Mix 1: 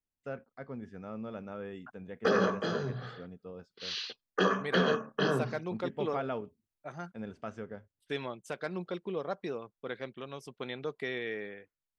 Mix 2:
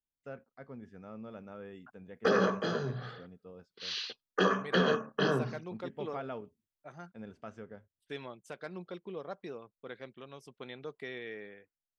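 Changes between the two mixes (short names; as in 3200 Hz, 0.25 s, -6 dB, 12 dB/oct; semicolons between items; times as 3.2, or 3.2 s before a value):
first voice -5.0 dB; second voice -6.0 dB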